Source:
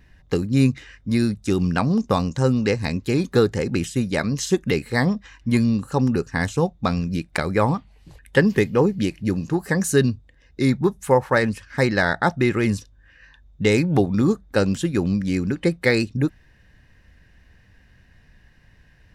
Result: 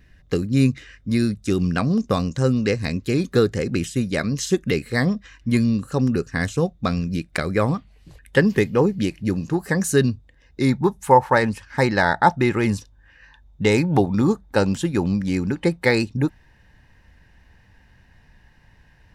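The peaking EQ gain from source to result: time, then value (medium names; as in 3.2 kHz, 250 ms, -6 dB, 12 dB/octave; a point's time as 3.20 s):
peaking EQ 880 Hz 0.32 oct
7.74 s -9.5 dB
8.54 s 0 dB
10.08 s 0 dB
10.90 s +9.5 dB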